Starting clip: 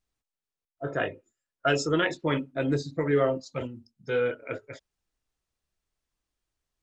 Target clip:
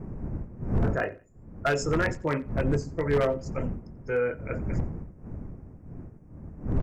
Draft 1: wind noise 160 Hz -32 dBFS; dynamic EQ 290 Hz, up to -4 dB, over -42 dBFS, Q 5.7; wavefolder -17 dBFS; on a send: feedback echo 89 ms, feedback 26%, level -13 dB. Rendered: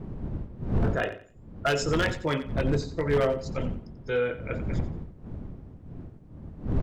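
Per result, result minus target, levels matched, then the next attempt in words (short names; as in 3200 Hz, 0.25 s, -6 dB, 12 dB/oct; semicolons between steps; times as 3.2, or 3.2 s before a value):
4000 Hz band +6.5 dB; echo-to-direct +9 dB
wind noise 160 Hz -32 dBFS; dynamic EQ 290 Hz, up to -4 dB, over -42 dBFS, Q 5.7; Butterworth band-stop 3600 Hz, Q 1.2; wavefolder -17 dBFS; on a send: feedback echo 89 ms, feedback 26%, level -13 dB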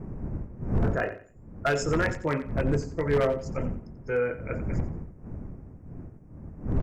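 echo-to-direct +9 dB
wind noise 160 Hz -32 dBFS; dynamic EQ 290 Hz, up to -4 dB, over -42 dBFS, Q 5.7; Butterworth band-stop 3600 Hz, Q 1.2; wavefolder -17 dBFS; on a send: feedback echo 89 ms, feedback 26%, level -22 dB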